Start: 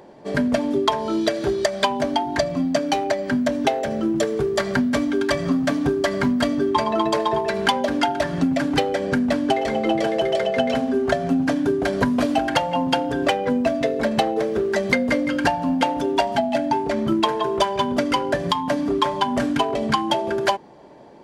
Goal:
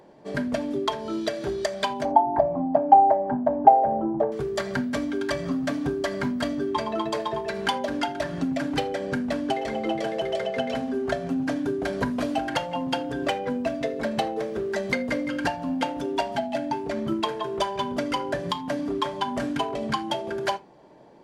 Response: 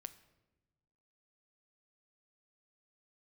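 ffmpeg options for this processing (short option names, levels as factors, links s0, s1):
-filter_complex "[0:a]asettb=1/sr,asplit=3[s0][s1][s2];[s0]atrim=end=2.054[s3];[s1]atrim=start=2.05:end=4.32,asetpts=PTS-STARTPTS,afade=t=in:d=0.004:c=qsin,afade=t=out:st=2.266:d=0.004:c=qsin,lowpass=f=820:t=q:w=7.3[s4];[s2]atrim=start=4.316[s5];[s3][s4]acrossfade=d=0.004:c1=hsin:c2=qsin[s6];[s6][s5]acrossfade=d=0.004:c1=qsin:c2=hsin[s7];[1:a]atrim=start_sample=2205,atrim=end_sample=4410,asetrate=48510,aresample=44100[s8];[s7][s8]afir=irnorm=-1:irlink=0"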